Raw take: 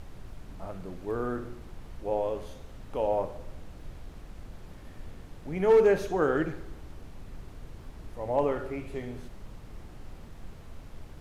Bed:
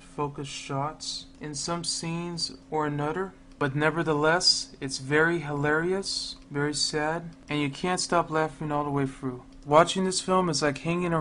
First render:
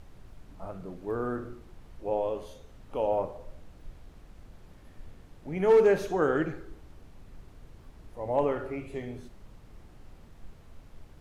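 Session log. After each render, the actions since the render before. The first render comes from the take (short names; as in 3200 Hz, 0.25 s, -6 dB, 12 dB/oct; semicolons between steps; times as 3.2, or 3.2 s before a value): noise print and reduce 6 dB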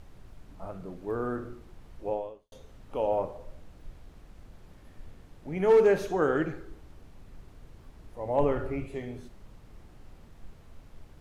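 2.09–2.52 fade out quadratic; 8.38–8.86 low shelf 150 Hz +11.5 dB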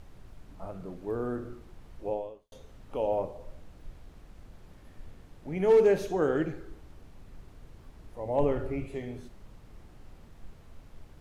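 dynamic EQ 1300 Hz, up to -6 dB, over -46 dBFS, Q 1.2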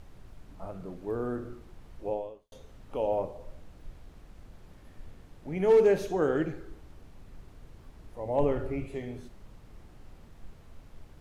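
nothing audible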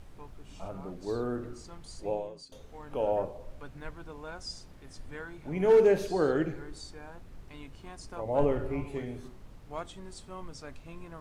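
add bed -20.5 dB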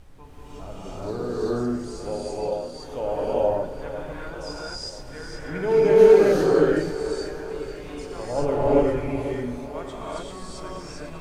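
thinning echo 0.496 s, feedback 61%, high-pass 180 Hz, level -12.5 dB; non-linear reverb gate 0.42 s rising, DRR -7 dB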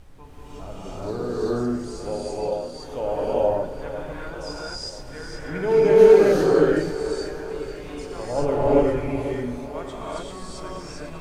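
gain +1 dB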